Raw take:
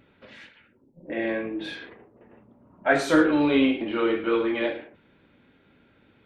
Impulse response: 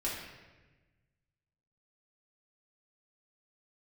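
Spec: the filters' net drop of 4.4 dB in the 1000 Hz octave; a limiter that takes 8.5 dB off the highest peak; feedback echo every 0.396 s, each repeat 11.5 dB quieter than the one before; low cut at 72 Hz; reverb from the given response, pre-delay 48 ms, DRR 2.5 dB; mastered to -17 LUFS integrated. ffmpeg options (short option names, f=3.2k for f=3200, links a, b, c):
-filter_complex "[0:a]highpass=72,equalizer=f=1k:t=o:g=-7,alimiter=limit=-18dB:level=0:latency=1,aecho=1:1:396|792|1188:0.266|0.0718|0.0194,asplit=2[a][b];[1:a]atrim=start_sample=2205,adelay=48[c];[b][c]afir=irnorm=-1:irlink=0,volume=-7dB[d];[a][d]amix=inputs=2:normalize=0,volume=8.5dB"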